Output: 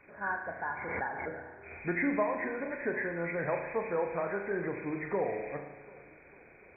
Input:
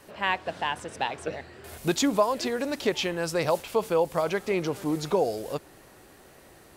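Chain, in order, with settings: knee-point frequency compression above 1.4 kHz 4:1; on a send: shuffle delay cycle 743 ms, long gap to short 1.5:1, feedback 37%, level -21 dB; on the sum: spring tank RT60 1 s, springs 35 ms, chirp 30 ms, DRR 5 dB; 0.69–1.52 s: swell ahead of each attack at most 33 dB/s; trim -8.5 dB

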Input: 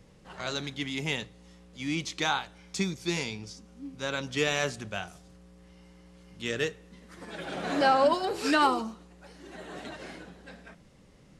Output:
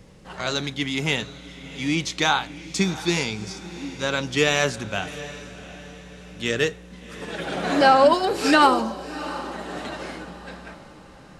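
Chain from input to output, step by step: echo that smears into a reverb 715 ms, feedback 41%, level -15 dB; trim +7.5 dB

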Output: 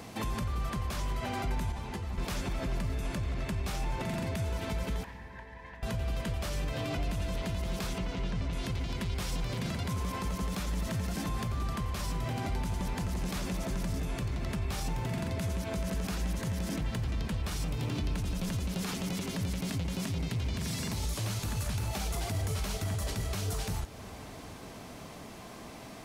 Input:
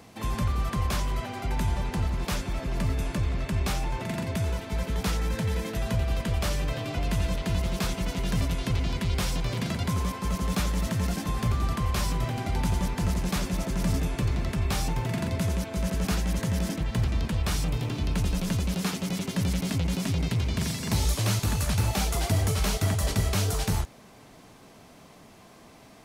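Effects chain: compression 2.5:1, threshold -34 dBFS, peak gain reduction 9.5 dB; peak limiter -31 dBFS, peak gain reduction 9 dB; 5.04–5.83 s: two resonant band-passes 1.3 kHz, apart 0.83 oct; 7.98–8.53 s: distance through air 110 m; reverberation RT60 5.3 s, pre-delay 49 ms, DRR 14 dB; 1.72–2.18 s: three-phase chorus; trim +5 dB

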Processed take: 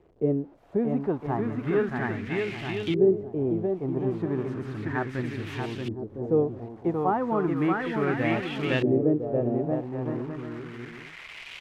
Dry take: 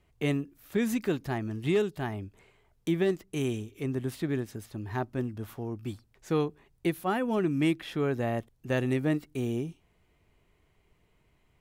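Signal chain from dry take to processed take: zero-crossing glitches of -26.5 dBFS; bouncing-ball echo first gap 630 ms, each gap 0.6×, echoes 5; LFO low-pass saw up 0.34 Hz 400–3200 Hz

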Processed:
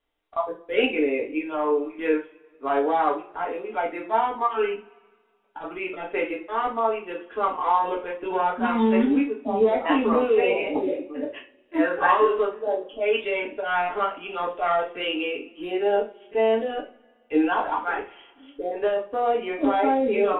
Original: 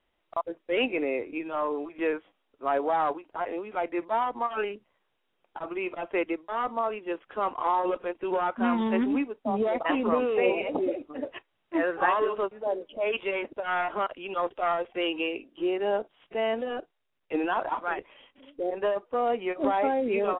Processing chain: spectral noise reduction 7 dB; two-slope reverb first 0.3 s, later 1.8 s, from -27 dB, DRR -2 dB

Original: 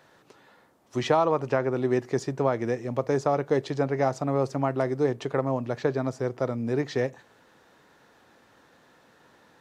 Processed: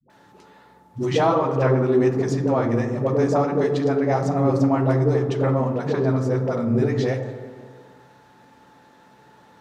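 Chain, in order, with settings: whistle 870 Hz -58 dBFS; flange 1.4 Hz, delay 4.1 ms, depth 8 ms, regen +51%; phase dispersion highs, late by 100 ms, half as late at 410 Hz; on a send: reverberation RT60 2.1 s, pre-delay 27 ms, DRR 6 dB; on the sum: trim +6.5 dB

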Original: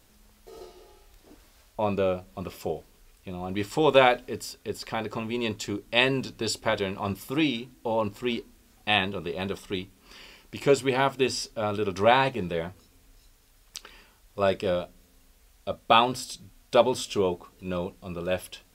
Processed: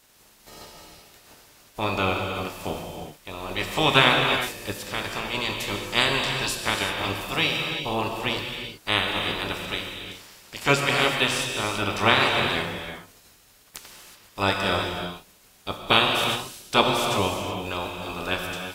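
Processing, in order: spectral peaks clipped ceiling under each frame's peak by 22 dB; gated-style reverb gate 400 ms flat, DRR 1.5 dB

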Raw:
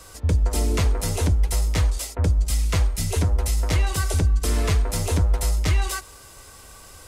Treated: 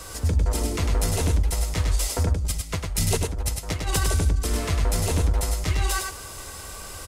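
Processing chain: peak limiter -22.5 dBFS, peak gain reduction 10.5 dB; 2.33–4.05 s: compressor with a negative ratio -31 dBFS, ratio -0.5; delay 102 ms -4.5 dB; trim +6 dB

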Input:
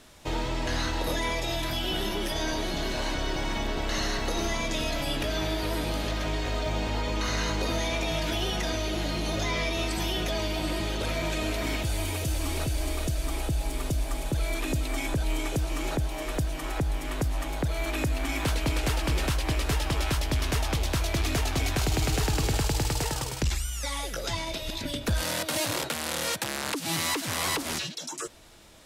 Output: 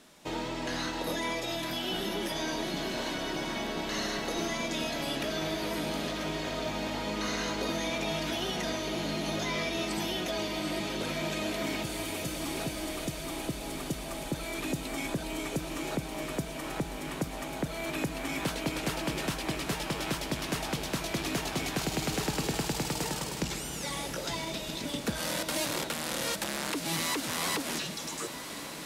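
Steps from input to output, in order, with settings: resonant low shelf 120 Hz -12.5 dB, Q 1.5; on a send: echo that smears into a reverb 1140 ms, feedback 68%, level -10 dB; on the sum: trim -3 dB; MP3 112 kbps 44.1 kHz

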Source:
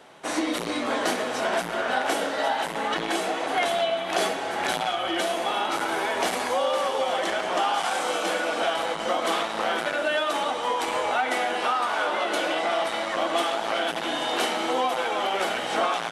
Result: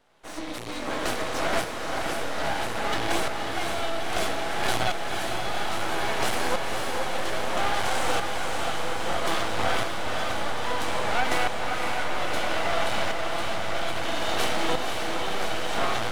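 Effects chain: half-wave rectifier; tremolo saw up 0.61 Hz, depth 85%; echo that smears into a reverb 525 ms, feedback 71%, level -4.5 dB; trim +4 dB

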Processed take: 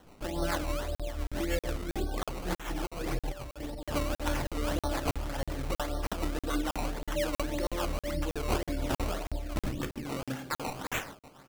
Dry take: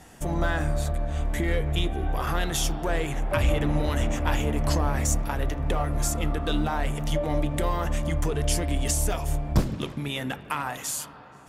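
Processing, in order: tone controls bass -8 dB, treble +3 dB; reverberation RT60 0.65 s, pre-delay 3 ms, DRR 1.5 dB; 1.65–3.86 s: compressor with a negative ratio -28 dBFS, ratio -0.5; rotary cabinet horn 7 Hz; spectral gate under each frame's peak -30 dB strong; delay 84 ms -17.5 dB; decimation with a swept rate 18×, swing 100% 1.8 Hz; crackling interface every 0.32 s, samples 2048, zero, from 0.95 s; trim -4 dB

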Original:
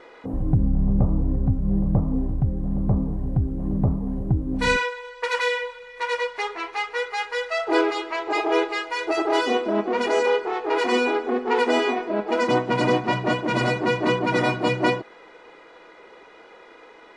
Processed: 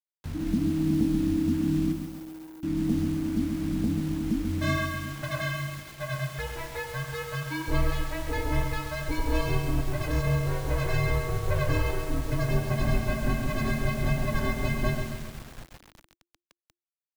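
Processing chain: two-band feedback delay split 420 Hz, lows 366 ms, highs 96 ms, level -11 dB; bit crusher 6-bit; 1.92–2.63 s: inverse Chebyshev band-stop 130–3600 Hz, stop band 80 dB; frequency shift -350 Hz; bass shelf 86 Hz +8 dB; bit-crushed delay 135 ms, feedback 55%, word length 6-bit, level -6.5 dB; trim -8.5 dB

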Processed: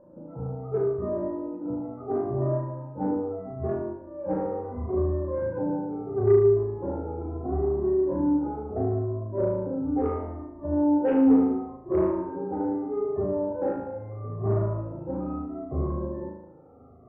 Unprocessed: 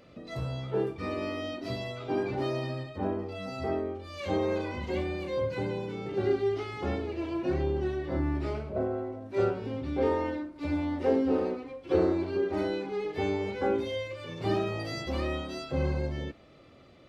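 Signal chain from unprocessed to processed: drifting ripple filter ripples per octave 1.3, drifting -0.74 Hz, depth 21 dB; steep low-pass 1.1 kHz 36 dB/octave; Chebyshev shaper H 5 -24 dB, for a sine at -9 dBFS; on a send: flutter echo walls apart 6.4 m, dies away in 0.8 s; on the sum: trim -5 dB

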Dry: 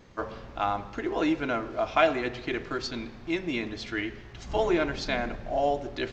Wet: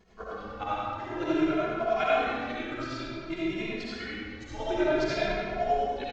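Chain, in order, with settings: square tremolo 10 Hz, depth 65%, duty 35%; algorithmic reverb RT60 1.9 s, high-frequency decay 0.75×, pre-delay 30 ms, DRR -8.5 dB; endless flanger 2.4 ms +0.53 Hz; trim -4 dB

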